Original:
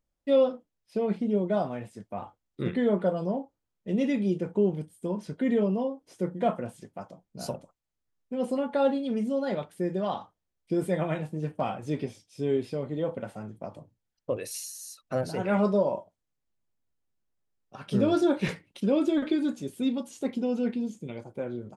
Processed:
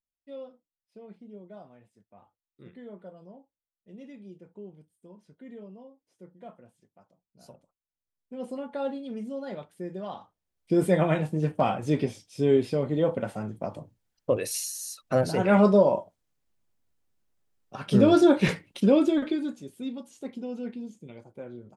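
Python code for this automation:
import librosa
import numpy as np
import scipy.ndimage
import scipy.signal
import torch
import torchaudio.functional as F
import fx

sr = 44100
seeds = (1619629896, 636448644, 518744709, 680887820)

y = fx.gain(x, sr, db=fx.line((7.24, -19.5), (8.36, -7.0), (10.17, -7.0), (10.81, 5.5), (18.88, 5.5), (19.67, -7.0)))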